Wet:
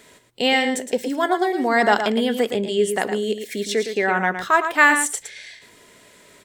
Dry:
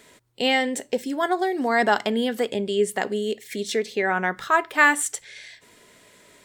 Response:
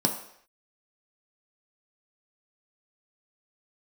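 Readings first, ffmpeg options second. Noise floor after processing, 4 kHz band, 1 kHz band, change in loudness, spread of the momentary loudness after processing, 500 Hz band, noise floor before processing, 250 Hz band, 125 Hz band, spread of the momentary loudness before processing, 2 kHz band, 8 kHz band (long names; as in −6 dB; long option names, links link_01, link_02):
−51 dBFS, +3.0 dB, +3.0 dB, +3.0 dB, 10 LU, +3.0 dB, −54 dBFS, +3.0 dB, can't be measured, 10 LU, +3.0 dB, +3.0 dB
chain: -af "aecho=1:1:113:0.376,volume=2.5dB"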